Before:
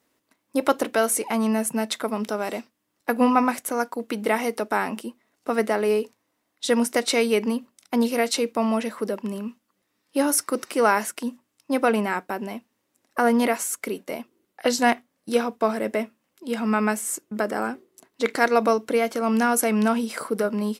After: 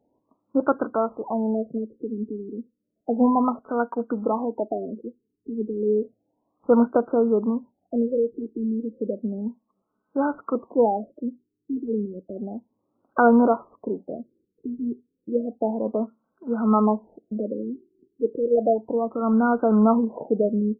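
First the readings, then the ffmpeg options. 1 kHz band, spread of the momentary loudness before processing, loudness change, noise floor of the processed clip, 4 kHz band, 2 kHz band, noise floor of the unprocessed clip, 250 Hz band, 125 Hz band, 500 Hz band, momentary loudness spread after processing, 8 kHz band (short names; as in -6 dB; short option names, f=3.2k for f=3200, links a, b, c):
-2.0 dB, 12 LU, -0.5 dB, -78 dBFS, under -40 dB, -10.0 dB, -75 dBFS, +1.5 dB, n/a, +0.5 dB, 15 LU, under -40 dB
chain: -af "aphaser=in_gain=1:out_gain=1:delay=4.7:decay=0.36:speed=0.15:type=sinusoidal,acrusher=bits=5:mode=log:mix=0:aa=0.000001,afftfilt=real='re*lt(b*sr/1024,450*pow(1600/450,0.5+0.5*sin(2*PI*0.32*pts/sr)))':imag='im*lt(b*sr/1024,450*pow(1600/450,0.5+0.5*sin(2*PI*0.32*pts/sr)))':win_size=1024:overlap=0.75"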